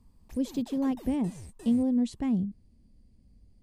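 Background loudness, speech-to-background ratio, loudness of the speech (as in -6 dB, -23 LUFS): -49.0 LUFS, 19.0 dB, -30.0 LUFS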